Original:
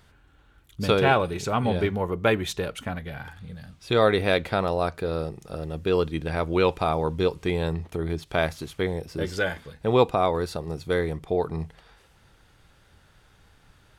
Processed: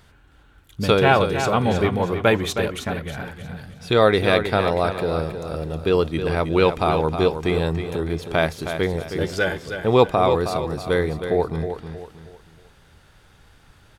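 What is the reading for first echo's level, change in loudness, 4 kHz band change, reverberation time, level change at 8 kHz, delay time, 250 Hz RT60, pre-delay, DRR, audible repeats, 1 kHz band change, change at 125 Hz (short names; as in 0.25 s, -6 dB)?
-8.5 dB, +4.5 dB, +4.5 dB, none, n/a, 0.316 s, none, none, none, 3, +4.5 dB, +4.5 dB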